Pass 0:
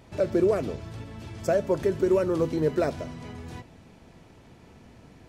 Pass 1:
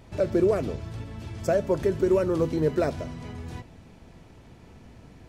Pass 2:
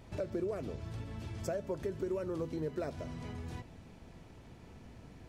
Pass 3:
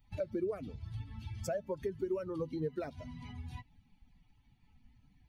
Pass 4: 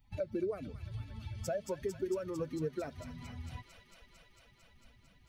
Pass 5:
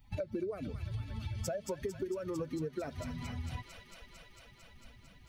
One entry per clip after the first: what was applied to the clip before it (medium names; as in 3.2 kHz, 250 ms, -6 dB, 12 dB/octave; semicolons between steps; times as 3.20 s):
bass shelf 89 Hz +7.5 dB
compression 2.5:1, threshold -34 dBFS, peak gain reduction 11 dB; trim -4 dB
expander on every frequency bin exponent 2; trim +3.5 dB
feedback echo behind a high-pass 225 ms, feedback 83%, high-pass 1.9 kHz, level -5 dB
compression 6:1, threshold -40 dBFS, peak gain reduction 9.5 dB; trim +6 dB